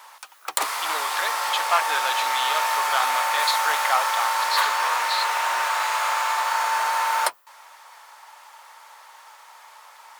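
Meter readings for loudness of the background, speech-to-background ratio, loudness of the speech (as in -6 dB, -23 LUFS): -23.0 LUFS, -4.5 dB, -27.5 LUFS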